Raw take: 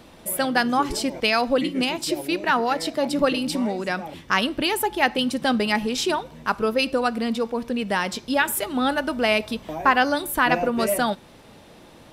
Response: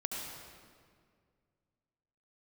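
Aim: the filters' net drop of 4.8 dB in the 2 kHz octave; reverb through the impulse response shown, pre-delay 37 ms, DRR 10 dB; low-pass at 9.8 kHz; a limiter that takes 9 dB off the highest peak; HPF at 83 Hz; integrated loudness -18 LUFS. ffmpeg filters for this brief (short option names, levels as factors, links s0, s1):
-filter_complex "[0:a]highpass=83,lowpass=9800,equalizer=f=2000:t=o:g=-6.5,alimiter=limit=0.168:level=0:latency=1,asplit=2[s0][s1];[1:a]atrim=start_sample=2205,adelay=37[s2];[s1][s2]afir=irnorm=-1:irlink=0,volume=0.237[s3];[s0][s3]amix=inputs=2:normalize=0,volume=2.37"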